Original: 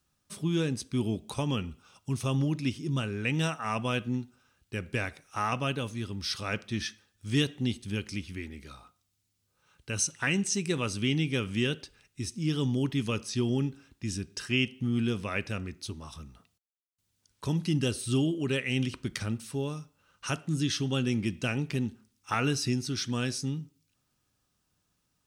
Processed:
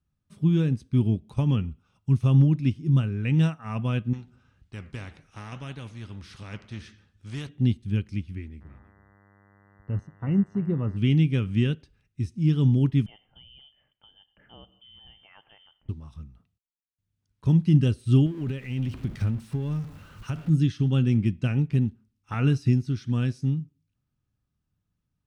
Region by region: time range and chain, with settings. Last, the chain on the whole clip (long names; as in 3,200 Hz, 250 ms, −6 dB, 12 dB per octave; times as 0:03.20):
0:04.13–0:07.49: low-pass filter 8,300 Hz + flanger 1.8 Hz, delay 5.8 ms, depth 5.7 ms, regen −82% + every bin compressed towards the loudest bin 2 to 1
0:08.60–0:10.96: Savitzky-Golay smoothing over 65 samples + single-tap delay 324 ms −16 dB + hum with harmonics 100 Hz, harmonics 20, −52 dBFS 0 dB per octave
0:13.06–0:15.89: high-pass filter 150 Hz 24 dB per octave + downward compressor 2 to 1, threshold −45 dBFS + voice inversion scrambler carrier 3,300 Hz
0:18.26–0:20.50: converter with a step at zero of −35.5 dBFS + downward compressor 5 to 1, threshold −29 dBFS
whole clip: bass and treble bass +14 dB, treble −9 dB; expander for the loud parts 1.5 to 1, over −35 dBFS